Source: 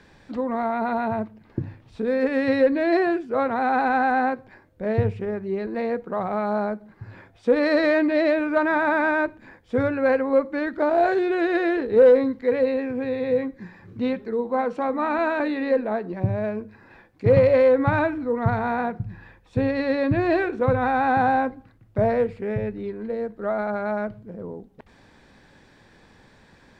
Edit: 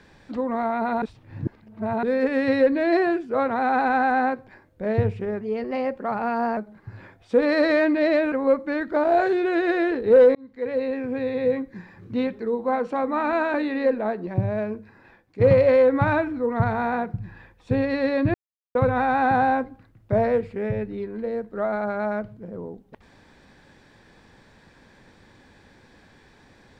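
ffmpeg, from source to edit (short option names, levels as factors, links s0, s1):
-filter_complex "[0:a]asplit=10[s0][s1][s2][s3][s4][s5][s6][s7][s8][s9];[s0]atrim=end=1.022[s10];[s1]atrim=start=1.018:end=2.032,asetpts=PTS-STARTPTS,areverse[s11];[s2]atrim=start=2.028:end=5.414[s12];[s3]atrim=start=5.41:end=6.71,asetpts=PTS-STARTPTS,asetrate=49392,aresample=44100,atrim=end_sample=51187,asetpts=PTS-STARTPTS[s13];[s4]atrim=start=6.706:end=8.462[s14];[s5]atrim=start=10.178:end=12.21,asetpts=PTS-STARTPTS,afade=t=out:st=2.028:d=0.004:c=hsin[s15];[s6]atrim=start=12.21:end=17.27,asetpts=PTS-STARTPTS,afade=t=in:d=0.96:c=qsin,afade=t=out:st=4.37:d=0.69:silence=0.473151[s16];[s7]atrim=start=17.27:end=20.2,asetpts=PTS-STARTPTS,afade=t=in:d=0.004:c=hsin:silence=0.473151,afade=t=out:st=2.926:d=0.004:c=hsin[s17];[s8]atrim=start=20.2:end=20.61,asetpts=PTS-STARTPTS,volume=0[s18];[s9]atrim=start=20.61,asetpts=PTS-STARTPTS,afade=t=in:d=0.004:c=hsin[s19];[s10][s11]acrossfade=d=0.004:c1=hsin:c2=hsin[s20];[s20][s12]acrossfade=d=0.004:c1=hsin:c2=hsin[s21];[s21][s13]acrossfade=d=0.004:c1=hsin:c2=hsin[s22];[s22][s14]acrossfade=d=0.004:c1=hsin:c2=hsin[s23];[s15][s16][s17][s18][s19]concat=n=5:v=0:a=1[s24];[s23][s24]acrossfade=d=0.004:c1=hsin:c2=hsin"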